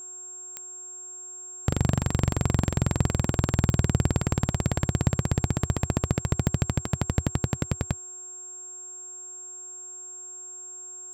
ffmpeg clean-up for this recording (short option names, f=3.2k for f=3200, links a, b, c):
-af "adeclick=t=4,bandreject=f=362.8:t=h:w=4,bandreject=f=725.6:t=h:w=4,bandreject=f=1.0884k:t=h:w=4,bandreject=f=1.4512k:t=h:w=4,bandreject=f=7.5k:w=30"